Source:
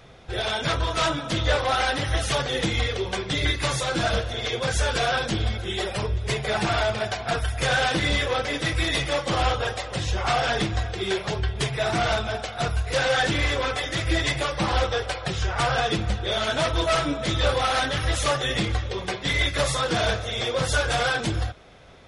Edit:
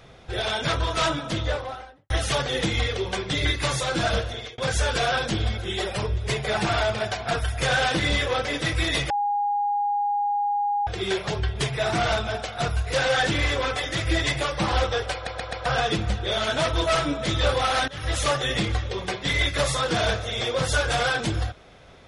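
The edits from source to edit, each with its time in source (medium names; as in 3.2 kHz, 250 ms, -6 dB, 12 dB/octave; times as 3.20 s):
1.12–2.10 s: studio fade out
4.25–4.58 s: fade out
9.10–10.87 s: bleep 819 Hz -21 dBFS
15.14 s: stutter in place 0.13 s, 4 plays
17.88–18.17 s: fade in, from -20.5 dB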